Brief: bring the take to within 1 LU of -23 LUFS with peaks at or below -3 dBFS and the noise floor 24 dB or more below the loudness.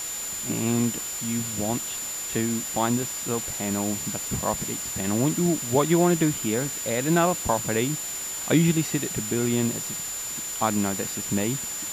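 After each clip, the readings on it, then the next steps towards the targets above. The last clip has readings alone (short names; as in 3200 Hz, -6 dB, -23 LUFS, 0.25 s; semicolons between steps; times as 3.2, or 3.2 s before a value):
steady tone 7100 Hz; tone level -31 dBFS; noise floor -33 dBFS; noise floor target -49 dBFS; loudness -25.0 LUFS; peak -7.5 dBFS; loudness target -23.0 LUFS
-> notch 7100 Hz, Q 30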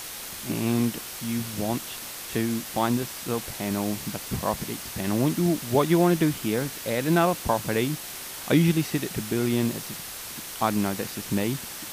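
steady tone none; noise floor -38 dBFS; noise floor target -51 dBFS
-> denoiser 13 dB, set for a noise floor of -38 dBFS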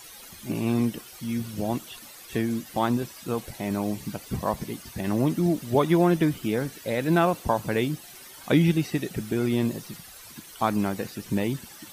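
noise floor -46 dBFS; noise floor target -51 dBFS
-> denoiser 6 dB, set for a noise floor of -46 dBFS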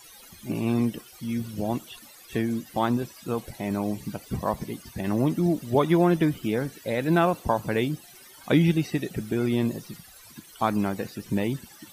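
noise floor -50 dBFS; noise floor target -51 dBFS
-> denoiser 6 dB, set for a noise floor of -50 dBFS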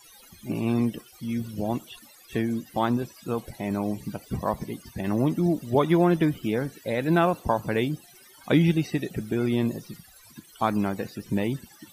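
noise floor -53 dBFS; loudness -26.5 LUFS; peak -8.5 dBFS; loudness target -23.0 LUFS
-> gain +3.5 dB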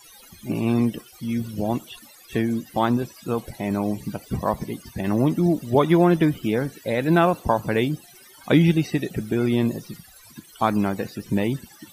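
loudness -23.0 LUFS; peak -5.0 dBFS; noise floor -49 dBFS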